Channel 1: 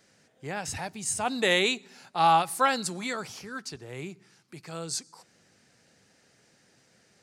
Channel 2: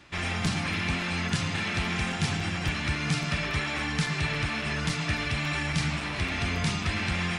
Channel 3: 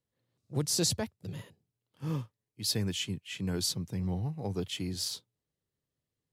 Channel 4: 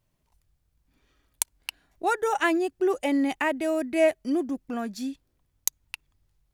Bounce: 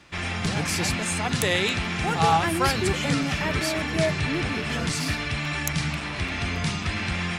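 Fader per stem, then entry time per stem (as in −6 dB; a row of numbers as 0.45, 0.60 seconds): −1.0, +1.0, −0.5, −4.5 decibels; 0.00, 0.00, 0.00, 0.00 seconds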